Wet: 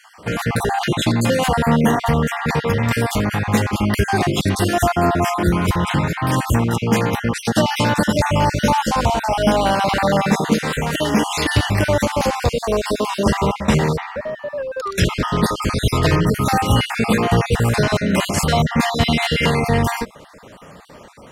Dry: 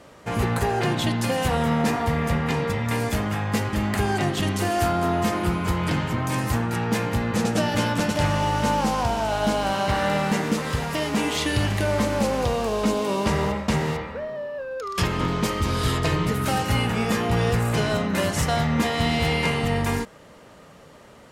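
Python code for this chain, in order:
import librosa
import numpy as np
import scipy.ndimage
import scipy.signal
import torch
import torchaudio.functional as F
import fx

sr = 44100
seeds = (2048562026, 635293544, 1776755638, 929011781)

y = fx.spec_dropout(x, sr, seeds[0], share_pct=37)
y = y * librosa.db_to_amplitude(7.5)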